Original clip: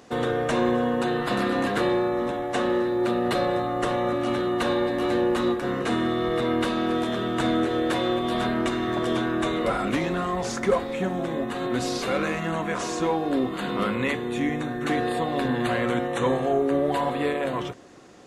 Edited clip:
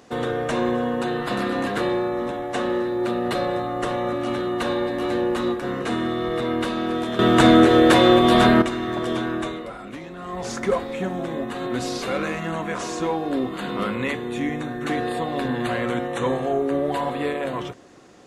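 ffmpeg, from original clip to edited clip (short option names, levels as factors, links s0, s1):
-filter_complex "[0:a]asplit=5[s0][s1][s2][s3][s4];[s0]atrim=end=7.192[s5];[s1]atrim=start=7.188:end=8.622,asetpts=PTS-STARTPTS,volume=3.35[s6];[s2]atrim=start=8.618:end=9.68,asetpts=PTS-STARTPTS,afade=t=out:st=0.712:d=0.35:silence=0.281838[s7];[s3]atrim=start=9.68:end=10.17,asetpts=PTS-STARTPTS,volume=0.282[s8];[s4]atrim=start=10.17,asetpts=PTS-STARTPTS,afade=t=in:d=0.35:silence=0.281838[s9];[s5][s6]acrossfade=d=0.004:c1=hsin:c2=hsin[s10];[s7][s8][s9]concat=n=3:v=0:a=1[s11];[s10][s11]acrossfade=d=0.004:c1=hsin:c2=hsin"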